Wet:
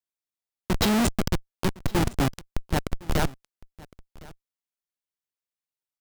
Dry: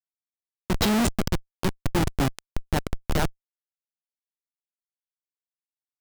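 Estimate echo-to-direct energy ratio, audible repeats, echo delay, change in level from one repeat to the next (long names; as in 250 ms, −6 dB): −22.0 dB, 1, 1,060 ms, repeats not evenly spaced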